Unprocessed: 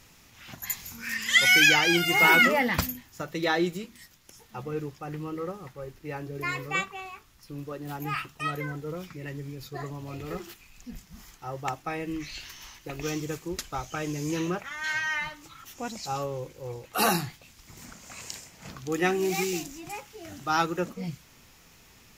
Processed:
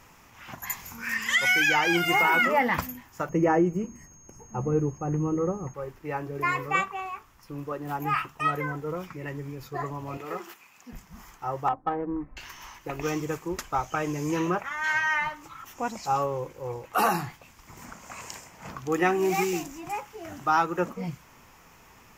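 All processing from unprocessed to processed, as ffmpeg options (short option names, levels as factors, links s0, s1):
-filter_complex "[0:a]asettb=1/sr,asplit=3[s0][s1][s2];[s0]atrim=end=3.294[s3];[s1]atrim=start=3.29:end=5.74,asetpts=PTS-STARTPTS,afade=t=in:d=0.004:c=qsin,afade=t=out:st=2.446:d=0.004:c=qsin,tiltshelf=f=690:g=10,aeval=exprs='val(0)+0.00316*sin(2*PI*6500*n/s)':c=same,asuperstop=centerf=3700:order=20:qfactor=2.8[s4];[s2]atrim=start=5.736[s5];[s3][s4]acrossfade=d=0.004:c1=hsin:c2=qsin[s6];[s6][s5]acrossfade=d=0.004:c1=qsin:c2=hsin,asettb=1/sr,asplit=3[s7][s8][s9];[s7]atrim=end=10.174[s10];[s8]atrim=start=10.17:end=10.93,asetpts=PTS-STARTPTS,afade=t=in:d=0.004:c=qsin,afade=t=out:st=0.756:d=0.004:c=qsin,highpass=150,lowshelf=f=240:g=-10[s11];[s9]atrim=start=10.926[s12];[s10][s11]acrossfade=d=0.004:c1=hsin:c2=qsin[s13];[s13][s12]acrossfade=d=0.004:c1=qsin:c2=hsin,asettb=1/sr,asplit=3[s14][s15][s16];[s14]atrim=end=11.684[s17];[s15]atrim=start=11.68:end=12.37,asetpts=PTS-STARTPTS,afade=t=in:d=0.004:c=qsin,afade=t=out:st=0.686:d=0.004:c=qsin,lowpass=f=1700:w=0.5412,lowpass=f=1700:w=1.3066,aecho=1:1:3.9:0.42,atrim=end_sample=30429,adynamicsmooth=sensitivity=1:basefreq=630[s18];[s16]atrim=start=12.366[s19];[s17][s18]acrossfade=d=0.004:c1=hsin:c2=qsin[s20];[s20][s19]acrossfade=d=0.004:c1=qsin:c2=hsin,equalizer=f=1000:t=o:w=0.67:g=6,equalizer=f=4000:t=o:w=0.67:g=-8,equalizer=f=10000:t=o:w=0.67:g=-4,alimiter=limit=0.158:level=0:latency=1:release=238,equalizer=f=940:w=0.38:g=4"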